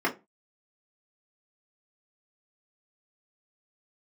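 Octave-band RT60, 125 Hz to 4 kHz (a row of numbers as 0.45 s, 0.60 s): 0.35 s, 0.30 s, 0.25 s, 0.25 s, 0.20 s, 0.15 s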